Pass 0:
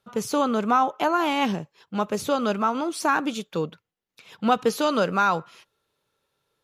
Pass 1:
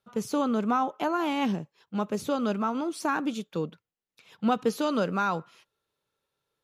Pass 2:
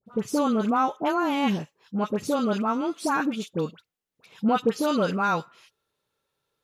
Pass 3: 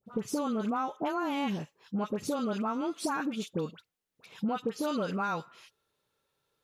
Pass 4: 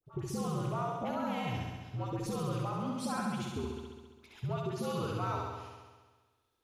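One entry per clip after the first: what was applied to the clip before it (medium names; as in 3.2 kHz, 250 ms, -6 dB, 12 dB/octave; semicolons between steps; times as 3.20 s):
dynamic bell 230 Hz, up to +6 dB, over -38 dBFS, Q 0.77; trim -7 dB
phase dispersion highs, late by 66 ms, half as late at 1.3 kHz; trim +3 dB
compression 5:1, threshold -29 dBFS, peak gain reduction 11.5 dB
frequency shift -81 Hz; flutter echo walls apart 11.5 m, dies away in 1.4 s; trim -6 dB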